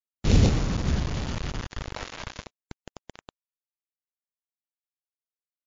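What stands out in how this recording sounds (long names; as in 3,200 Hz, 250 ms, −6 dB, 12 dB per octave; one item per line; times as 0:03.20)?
aliases and images of a low sample rate 1,600 Hz, jitter 0%
phaser sweep stages 2, 0.37 Hz, lowest notch 210–1,500 Hz
a quantiser's noise floor 6 bits, dither none
MP3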